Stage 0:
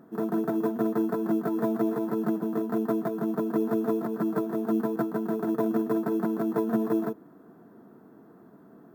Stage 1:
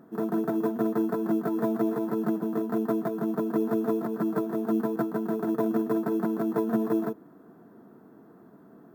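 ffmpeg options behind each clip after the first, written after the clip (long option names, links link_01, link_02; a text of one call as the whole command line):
ffmpeg -i in.wav -af anull out.wav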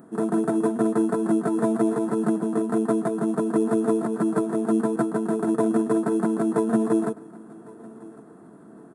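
ffmpeg -i in.wav -af "aecho=1:1:1105|2210:0.0794|0.0278,aresample=22050,aresample=44100,aexciter=amount=3.3:drive=9.4:freq=8000,volume=4.5dB" out.wav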